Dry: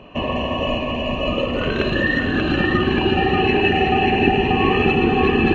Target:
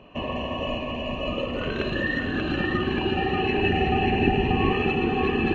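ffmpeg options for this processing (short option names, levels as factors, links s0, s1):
-filter_complex "[0:a]asettb=1/sr,asplit=3[s0][s1][s2];[s0]atrim=end=3.584[s3];[s1]atrim=start=3.58:end=4.73,asetpts=PTS-STARTPTS,afade=t=in:d=0.004:c=qsin,afade=t=out:st=1.146:d=0.004:c=qsin,lowshelf=f=180:g=7.5[s4];[s2]atrim=start=4.726[s5];[s3][s4]acrossfade=d=0.004:c1=hsin:c2=qsin[s6];[s6][s5]acrossfade=d=0.004:c1=qsin:c2=hsin,volume=0.447"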